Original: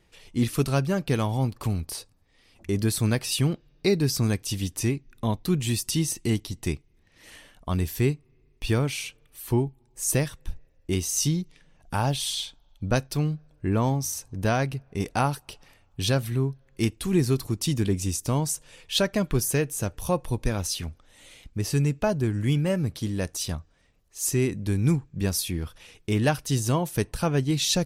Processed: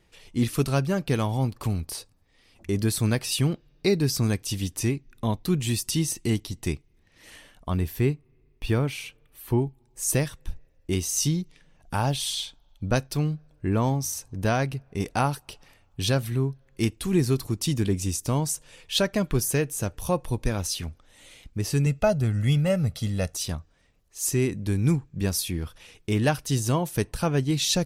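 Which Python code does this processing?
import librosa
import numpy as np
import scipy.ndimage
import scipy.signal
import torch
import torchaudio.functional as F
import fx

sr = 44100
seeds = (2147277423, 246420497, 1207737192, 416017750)

y = fx.peak_eq(x, sr, hz=6900.0, db=-7.5, octaves=1.8, at=(7.7, 9.62))
y = fx.comb(y, sr, ms=1.5, depth=0.65, at=(21.86, 23.35))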